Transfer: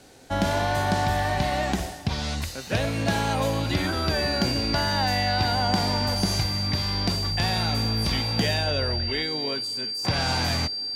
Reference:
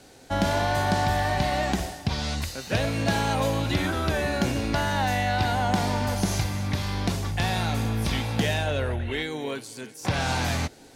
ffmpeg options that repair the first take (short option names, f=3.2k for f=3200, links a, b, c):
-af "bandreject=f=4.7k:w=30"